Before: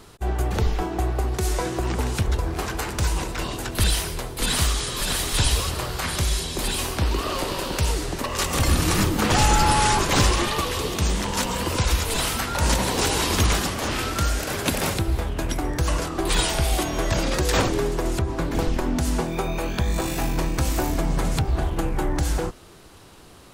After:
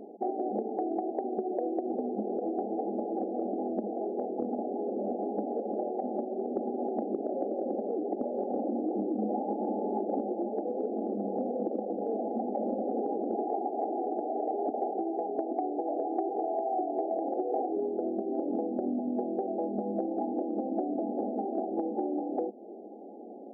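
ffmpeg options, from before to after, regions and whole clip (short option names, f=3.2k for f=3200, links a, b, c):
-filter_complex "[0:a]asettb=1/sr,asplit=3[a][b][c];[a]atrim=end=10.354[d];[b]atrim=start=10.35:end=11.37,asetpts=PTS-STARTPTS,afade=t=in:d=0.004:c=qsin,afade=t=out:st=1.016:d=0.004:c=qsin,bandreject=f=60:t=h:w=6,bandreject=f=120:t=h:w=6,bandreject=f=180:t=h:w=6,bandreject=f=240:t=h:w=6,bandreject=f=300:t=h:w=6,bandreject=f=360:t=h:w=6,bandreject=f=420:t=h:w=6,bandreject=f=480:t=h:w=6,bandreject=f=540:t=h:w=6,tremolo=f=260:d=0.4[e];[c]atrim=start=11.366[f];[d][e]acrossfade=d=0.004:c1=hsin:c2=qsin[g];[g][f]acrossfade=d=0.004:c1=qsin:c2=hsin,asettb=1/sr,asplit=3[h][i][j];[h]atrim=end=13.344[k];[i]atrim=start=13.34:end=17.77,asetpts=PTS-STARTPTS,afade=t=in:d=0.004:c=qsin,afade=t=out:st=4.426:d=0.004:c=qsin,highpass=f=530:p=1,equalizer=f=1.2k:w=0.35:g=6,aecho=1:1:2.7:0.56,atrim=end_sample=195363[l];[j]atrim=start=17.766[m];[k][l]acrossfade=d=0.004:c1=hsin:c2=qsin[n];[n][m]acrossfade=d=0.004:c1=qsin:c2=hsin,afftfilt=real='re*between(b*sr/4096,200,840)':imag='im*between(b*sr/4096,200,840)':win_size=4096:overlap=0.75,acompressor=threshold=-36dB:ratio=6,volume=7dB"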